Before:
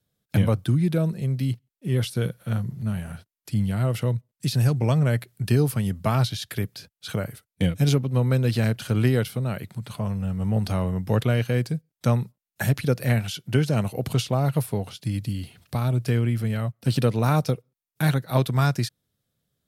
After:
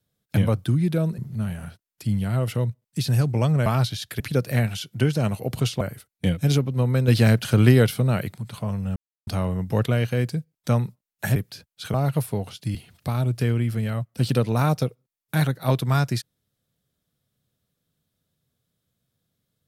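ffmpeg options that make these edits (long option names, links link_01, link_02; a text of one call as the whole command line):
ffmpeg -i in.wav -filter_complex "[0:a]asplit=12[link_01][link_02][link_03][link_04][link_05][link_06][link_07][link_08][link_09][link_10][link_11][link_12];[link_01]atrim=end=1.182[link_13];[link_02]atrim=start=2.648:end=5.132[link_14];[link_03]atrim=start=6.058:end=6.602[link_15];[link_04]atrim=start=12.728:end=14.342[link_16];[link_05]atrim=start=7.178:end=8.452[link_17];[link_06]atrim=start=8.448:end=9.712,asetpts=PTS-STARTPTS,volume=5.5dB[link_18];[link_07]atrim=start=9.708:end=10.33,asetpts=PTS-STARTPTS,afade=type=out:start_time=0.618:duration=0.004:curve=hsin[link_19];[link_08]atrim=start=10.33:end=10.64,asetpts=PTS-STARTPTS,volume=0[link_20];[link_09]atrim=start=10.64:end=12.732,asetpts=PTS-STARTPTS,afade=type=in:duration=0.004:curve=hsin[link_21];[link_10]atrim=start=6.598:end=7.182[link_22];[link_11]atrim=start=14.338:end=15.152[link_23];[link_12]atrim=start=15.418[link_24];[link_13][link_14]acrossfade=duration=0.004:curve1=hsin:curve2=hsin[link_25];[link_25][link_15]acrossfade=duration=0.004:curve1=hsin:curve2=hsin[link_26];[link_26][link_16]acrossfade=duration=0.004:curve1=hsin:curve2=hsin[link_27];[link_27][link_17]acrossfade=duration=0.004:curve1=hsin:curve2=hsin[link_28];[link_28][link_18]acrossfade=duration=0.004:curve1=hsin:curve2=hsin[link_29];[link_19][link_20][link_21]concat=n=3:v=0:a=1[link_30];[link_29][link_30]acrossfade=duration=0.004:curve1=hsin:curve2=hsin[link_31];[link_31][link_22]acrossfade=duration=0.004:curve1=hsin:curve2=hsin[link_32];[link_32][link_23]acrossfade=duration=0.004:curve1=hsin:curve2=hsin[link_33];[link_33][link_24]acrossfade=duration=0.004:curve1=hsin:curve2=hsin" out.wav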